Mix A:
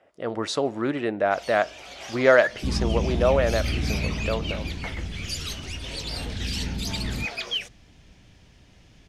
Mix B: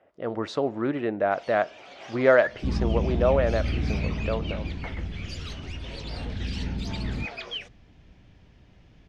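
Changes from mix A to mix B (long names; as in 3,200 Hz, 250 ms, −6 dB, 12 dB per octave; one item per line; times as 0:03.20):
first sound: add Bessel high-pass filter 200 Hz
master: add head-to-tape spacing loss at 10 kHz 21 dB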